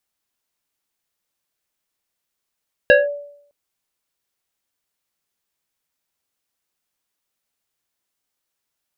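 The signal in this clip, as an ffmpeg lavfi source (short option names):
-f lavfi -i "aevalsrc='0.562*pow(10,-3*t/0.68)*sin(2*PI*577*t+1.5*clip(1-t/0.18,0,1)*sin(2*PI*1.89*577*t))':d=0.61:s=44100"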